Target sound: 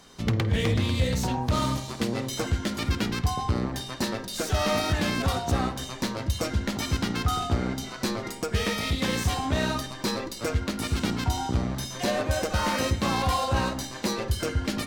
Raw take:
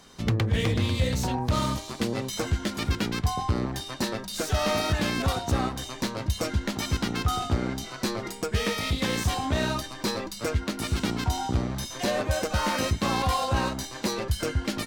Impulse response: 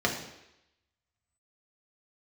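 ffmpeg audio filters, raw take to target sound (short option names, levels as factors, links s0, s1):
-filter_complex "[0:a]asplit=2[s0][s1];[1:a]atrim=start_sample=2205,adelay=50[s2];[s1][s2]afir=irnorm=-1:irlink=0,volume=0.0668[s3];[s0][s3]amix=inputs=2:normalize=0"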